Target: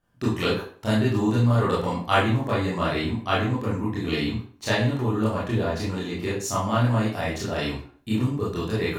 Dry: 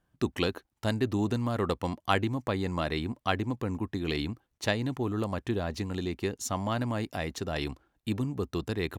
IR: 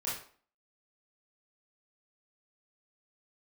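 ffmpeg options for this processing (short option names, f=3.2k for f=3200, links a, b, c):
-filter_complex "[1:a]atrim=start_sample=2205[a];[0:a][a]afir=irnorm=-1:irlink=0,volume=3dB"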